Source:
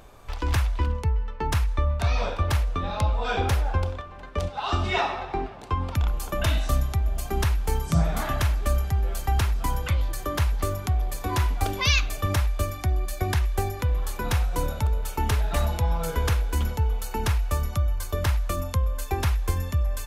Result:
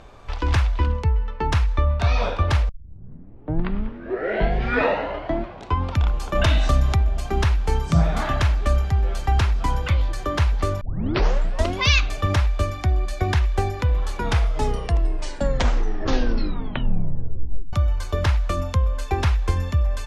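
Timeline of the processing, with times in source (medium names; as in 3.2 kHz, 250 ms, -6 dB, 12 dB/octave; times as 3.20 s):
2.69 s: tape start 3.13 s
6.35–7.04 s: level flattener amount 50%
10.81 s: tape start 0.98 s
14.11 s: tape stop 3.62 s
whole clip: low-pass 5.4 kHz 12 dB/octave; trim +4 dB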